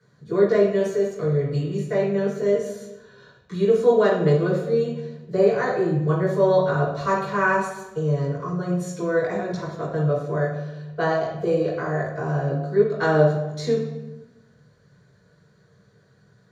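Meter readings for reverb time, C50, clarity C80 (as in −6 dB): 1.1 s, 3.5 dB, 7.0 dB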